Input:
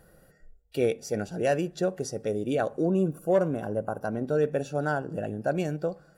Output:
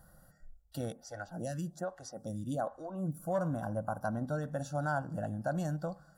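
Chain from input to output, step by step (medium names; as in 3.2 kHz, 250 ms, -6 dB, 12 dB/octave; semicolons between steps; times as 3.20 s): peak limiter -18.5 dBFS, peak gain reduction 4 dB; static phaser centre 1 kHz, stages 4; 0.92–3.20 s: lamp-driven phase shifter 1.2 Hz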